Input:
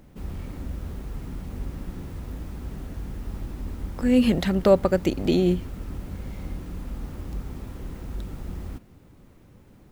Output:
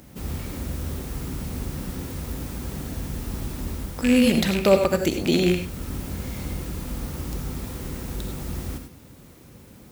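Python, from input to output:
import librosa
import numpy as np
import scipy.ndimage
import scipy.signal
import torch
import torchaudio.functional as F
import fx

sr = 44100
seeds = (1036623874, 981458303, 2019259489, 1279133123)

p1 = fx.rattle_buzz(x, sr, strikes_db=-22.0, level_db=-19.0)
p2 = scipy.signal.sosfilt(scipy.signal.butter(2, 52.0, 'highpass', fs=sr, output='sos'), p1)
p3 = fx.high_shelf(p2, sr, hz=3600.0, db=11.5)
p4 = fx.rider(p3, sr, range_db=4, speed_s=0.5)
p5 = p3 + (p4 * 10.0 ** (2.0 / 20.0))
p6 = fx.rev_gated(p5, sr, seeds[0], gate_ms=120, shape='rising', drr_db=6.0)
y = p6 * 10.0 ** (-5.5 / 20.0)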